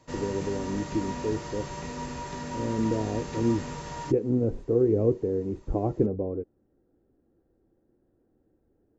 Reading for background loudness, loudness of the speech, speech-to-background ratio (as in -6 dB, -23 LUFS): -36.5 LUFS, -28.5 LUFS, 8.0 dB